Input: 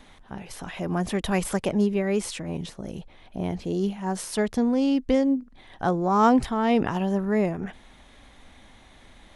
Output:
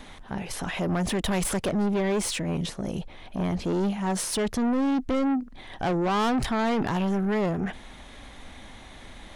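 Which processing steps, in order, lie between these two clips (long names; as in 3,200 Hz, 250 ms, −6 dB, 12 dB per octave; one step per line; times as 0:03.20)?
in parallel at +1 dB: brickwall limiter −17.5 dBFS, peak gain reduction 8.5 dB
on the sum: soft clipping −22 dBFS, distortion −7 dB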